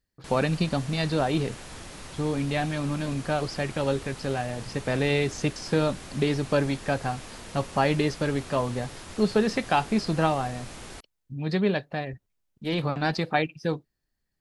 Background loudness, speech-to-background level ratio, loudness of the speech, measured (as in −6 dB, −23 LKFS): −42.0 LKFS, 14.5 dB, −27.5 LKFS